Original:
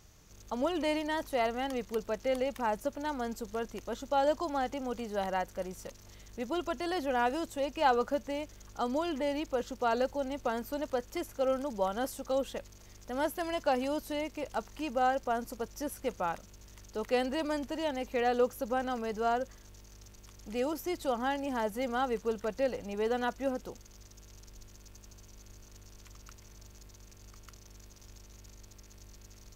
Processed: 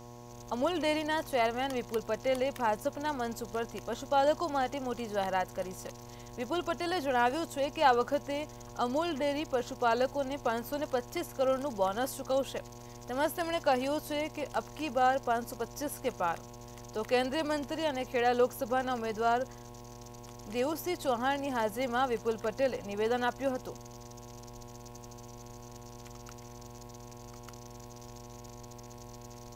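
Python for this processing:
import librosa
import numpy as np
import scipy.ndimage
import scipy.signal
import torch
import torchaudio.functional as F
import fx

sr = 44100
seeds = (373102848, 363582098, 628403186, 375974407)

y = fx.low_shelf(x, sr, hz=410.0, db=-5.0)
y = fx.dmg_buzz(y, sr, base_hz=120.0, harmonics=9, level_db=-52.0, tilt_db=-3, odd_only=False)
y = y * librosa.db_to_amplitude(3.0)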